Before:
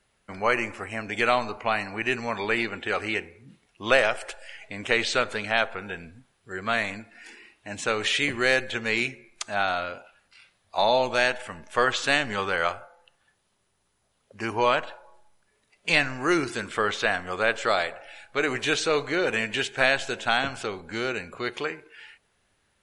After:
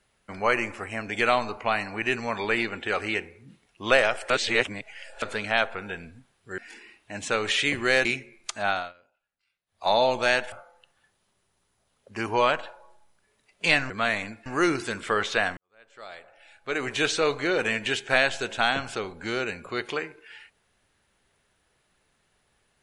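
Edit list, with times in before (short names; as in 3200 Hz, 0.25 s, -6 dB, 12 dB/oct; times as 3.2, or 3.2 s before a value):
4.3–5.22 reverse
6.58–7.14 move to 16.14
8.61–8.97 cut
9.62–10.81 dip -23.5 dB, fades 0.23 s
11.44–12.76 cut
17.25–18.71 fade in quadratic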